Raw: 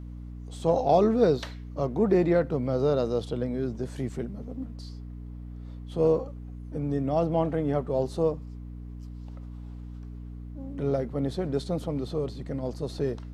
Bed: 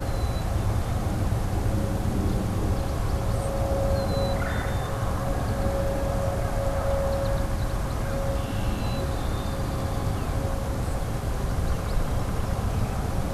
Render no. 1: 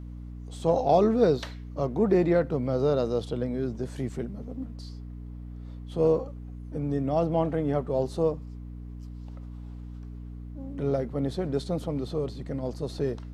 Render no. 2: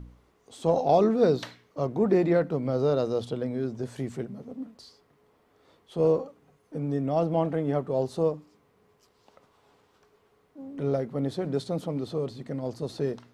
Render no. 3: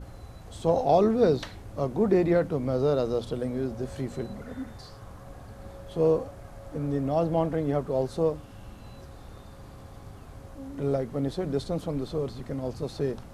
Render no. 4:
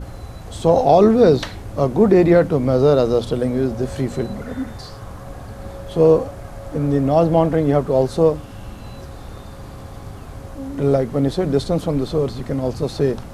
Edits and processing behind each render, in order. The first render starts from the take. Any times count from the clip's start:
nothing audible
de-hum 60 Hz, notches 5
add bed -18 dB
gain +10.5 dB; limiter -3 dBFS, peak gain reduction 3 dB

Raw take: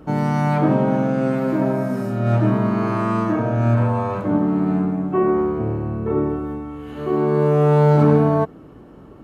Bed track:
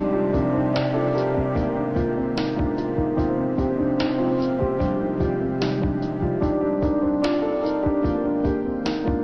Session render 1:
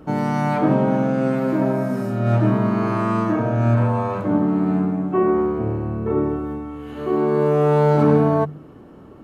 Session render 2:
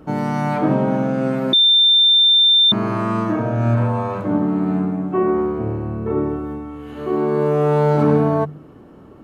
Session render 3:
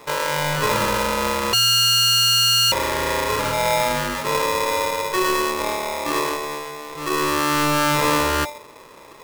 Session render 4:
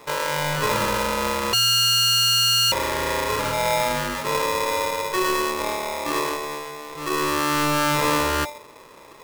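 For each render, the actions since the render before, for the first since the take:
de-hum 50 Hz, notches 3
1.53–2.72 bleep 3580 Hz -9.5 dBFS; 4.4–4.99 notch 5200 Hz
tube stage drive 14 dB, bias 0.35; polarity switched at an audio rate 740 Hz
gain -2 dB

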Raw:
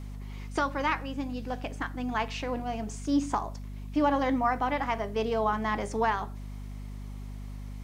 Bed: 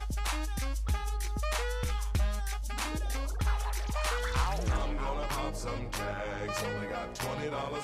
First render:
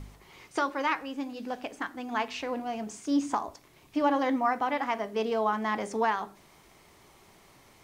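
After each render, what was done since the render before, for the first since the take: de-hum 50 Hz, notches 8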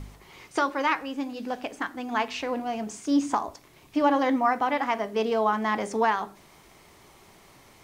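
gain +3.5 dB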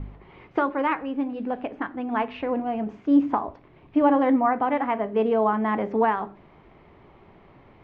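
LPF 3000 Hz 24 dB/oct; tilt shelf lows +5.5 dB, about 1100 Hz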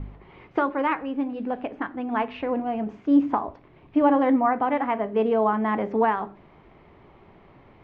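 nothing audible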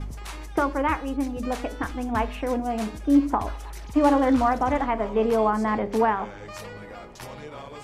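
add bed -4.5 dB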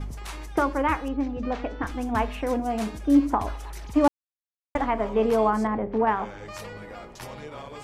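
1.08–1.87 air absorption 190 m; 4.08–4.75 mute; 5.67–6.07 tape spacing loss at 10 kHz 40 dB

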